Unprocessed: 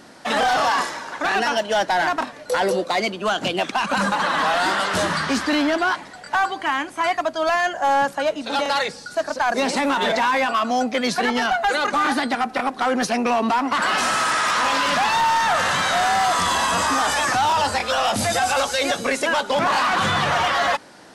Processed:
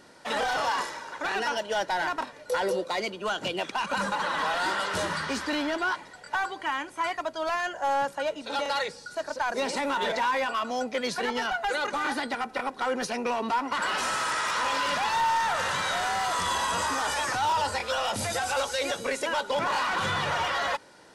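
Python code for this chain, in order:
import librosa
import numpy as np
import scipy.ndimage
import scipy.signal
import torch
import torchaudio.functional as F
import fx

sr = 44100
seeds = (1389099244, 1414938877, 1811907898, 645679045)

y = x + 0.34 * np.pad(x, (int(2.1 * sr / 1000.0), 0))[:len(x)]
y = F.gain(torch.from_numpy(y), -8.0).numpy()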